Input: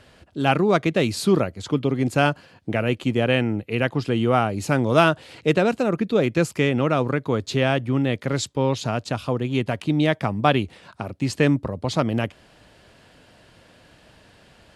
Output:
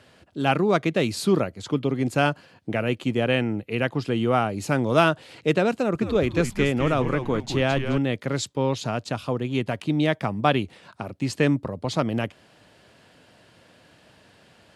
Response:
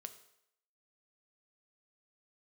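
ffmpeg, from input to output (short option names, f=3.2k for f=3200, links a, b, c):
-filter_complex "[0:a]highpass=94,asettb=1/sr,asplit=3[a][b][c];[a]atrim=end=5.734[d];[b]atrim=start=5.73:end=7.98,asetpts=PTS-STARTPTS,afade=t=in:d=0.004:c=qsin,afade=t=out:st=2.246:d=0.004:c=qsin,asplit=5[e][f][g][h][i];[f]adelay=212,afreqshift=-130,volume=-8dB[j];[g]adelay=424,afreqshift=-260,volume=-17.9dB[k];[h]adelay=636,afreqshift=-390,volume=-27.8dB[l];[i]adelay=848,afreqshift=-520,volume=-37.7dB[m];[e][j][k][l][m]amix=inputs=5:normalize=0,atrim=end_sample=99225[n];[c]atrim=start=7.976[o];[d][n]acrossfade=d=0.004:c1=hsin:c2=qsin[p];[p][o]acrossfade=d=0.004:c1=qsin:c2=hsin,volume=-2dB"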